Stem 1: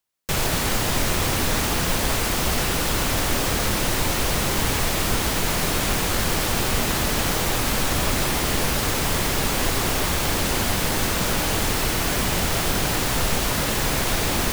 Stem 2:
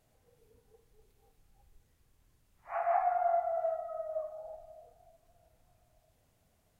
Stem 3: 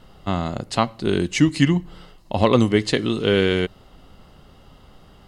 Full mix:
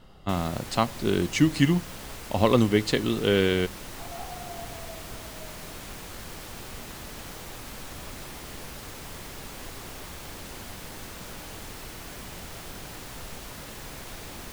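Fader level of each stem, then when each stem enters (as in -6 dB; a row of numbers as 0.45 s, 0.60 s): -18.0 dB, -12.0 dB, -4.0 dB; 0.00 s, 1.25 s, 0.00 s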